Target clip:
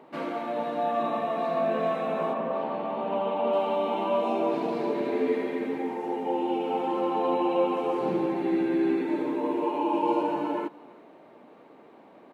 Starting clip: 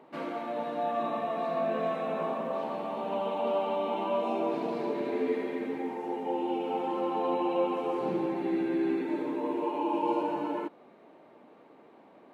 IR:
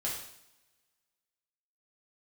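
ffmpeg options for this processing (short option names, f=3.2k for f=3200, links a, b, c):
-filter_complex "[0:a]asettb=1/sr,asplit=3[a][b][c];[a]atrim=end=2.334[d];[b]atrim=start=2.33:end=3.53,asetpts=PTS-STARTPTS,afade=t=in:d=0.004:c=qsin,afade=t=out:st=1.196:d=0.004:c=qsin,lowpass=3.2k[e];[c]atrim=start=3.526[f];[d][e]acrossfade=d=0.004:c1=hsin:c2=qsin[g];[g][f]acrossfade=d=0.004:c1=qsin:c2=hsin,asplit=2[h][i];[i]aecho=0:1:332:0.0794[j];[h][j]amix=inputs=2:normalize=0,volume=3.5dB"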